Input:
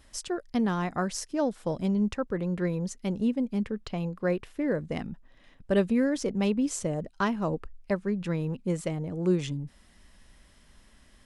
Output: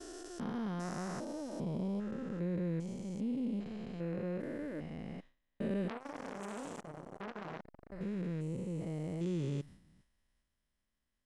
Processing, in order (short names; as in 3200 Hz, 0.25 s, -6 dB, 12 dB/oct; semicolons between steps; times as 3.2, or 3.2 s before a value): stepped spectrum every 0.4 s; expander -44 dBFS; 5.88–7.92 core saturation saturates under 2100 Hz; gain -5 dB